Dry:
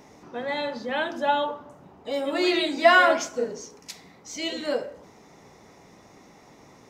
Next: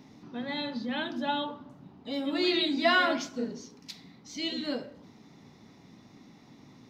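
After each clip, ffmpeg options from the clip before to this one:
-af "equalizer=f=125:t=o:w=1:g=8,equalizer=f=250:t=o:w=1:g=11,equalizer=f=500:t=o:w=1:g=-5,equalizer=f=4k:t=o:w=1:g=10,equalizer=f=8k:t=o:w=1:g=-7,volume=-8dB"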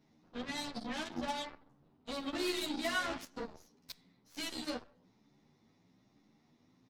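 -filter_complex "[0:a]acompressor=threshold=-34dB:ratio=3,aeval=exprs='0.0631*(cos(1*acos(clip(val(0)/0.0631,-1,1)))-cos(1*PI/2))+0.00224*(cos(6*acos(clip(val(0)/0.0631,-1,1)))-cos(6*PI/2))+0.0112*(cos(7*acos(clip(val(0)/0.0631,-1,1)))-cos(7*PI/2))':c=same,asplit=2[a][b];[b]adelay=10.6,afreqshift=1.1[c];[a][c]amix=inputs=2:normalize=1,volume=1dB"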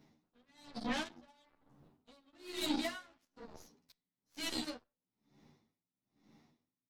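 -af "aeval=exprs='val(0)*pow(10,-34*(0.5-0.5*cos(2*PI*1.1*n/s))/20)':c=same,volume=4.5dB"

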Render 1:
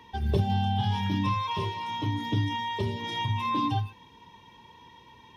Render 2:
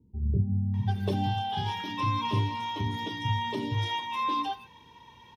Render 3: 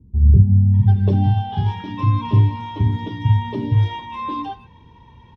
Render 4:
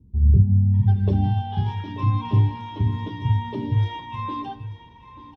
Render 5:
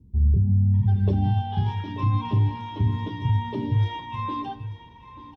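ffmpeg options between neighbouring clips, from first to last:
-filter_complex "[0:a]acrossover=split=310[a][b];[b]adelay=740[c];[a][c]amix=inputs=2:normalize=0"
-af "aemphasis=mode=reproduction:type=riaa,volume=2dB"
-af "aecho=1:1:886:0.178,volume=-4dB"
-af "alimiter=limit=-14dB:level=0:latency=1:release=43"

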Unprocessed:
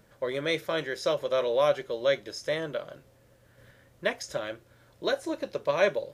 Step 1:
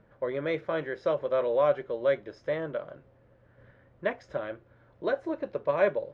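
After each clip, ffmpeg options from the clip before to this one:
-af "lowpass=1.7k"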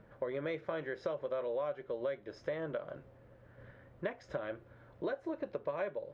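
-af "acompressor=threshold=-36dB:ratio=6,volume=1.5dB"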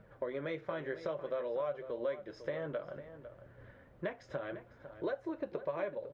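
-filter_complex "[0:a]flanger=delay=1.3:depth=6.7:regen=-46:speed=0.58:shape=triangular,asplit=2[a][b];[b]adelay=501.5,volume=-12dB,highshelf=f=4k:g=-11.3[c];[a][c]amix=inputs=2:normalize=0,volume=3.5dB"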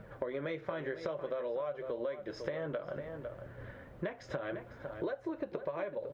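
-af "acompressor=threshold=-43dB:ratio=4,volume=8dB"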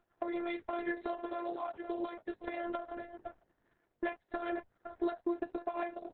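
-af "agate=range=-22dB:threshold=-41dB:ratio=16:detection=peak,afftfilt=real='hypot(re,im)*cos(PI*b)':imag='0':win_size=512:overlap=0.75,volume=5.5dB" -ar 48000 -c:a libopus -b:a 6k

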